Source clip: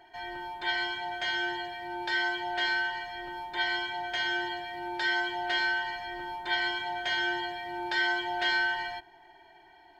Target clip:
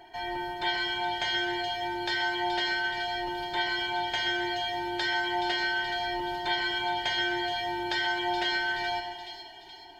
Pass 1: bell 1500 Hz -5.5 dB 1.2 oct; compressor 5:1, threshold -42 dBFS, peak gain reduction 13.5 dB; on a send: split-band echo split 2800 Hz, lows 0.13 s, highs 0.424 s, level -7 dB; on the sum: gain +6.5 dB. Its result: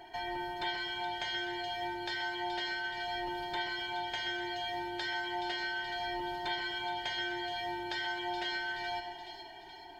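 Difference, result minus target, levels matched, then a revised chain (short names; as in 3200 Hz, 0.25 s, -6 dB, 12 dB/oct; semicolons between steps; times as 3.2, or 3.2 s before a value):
compressor: peak gain reduction +7.5 dB
bell 1500 Hz -5.5 dB 1.2 oct; compressor 5:1, threshold -32.5 dBFS, peak gain reduction 6 dB; on a send: split-band echo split 2800 Hz, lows 0.13 s, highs 0.424 s, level -7 dB; on the sum: gain +6.5 dB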